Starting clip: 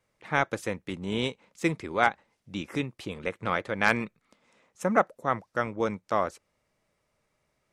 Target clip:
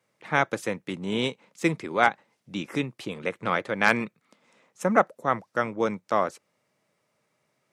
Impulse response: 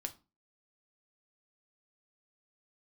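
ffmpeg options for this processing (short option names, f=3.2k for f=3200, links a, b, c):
-af "highpass=f=120:w=0.5412,highpass=f=120:w=1.3066,volume=2.5dB"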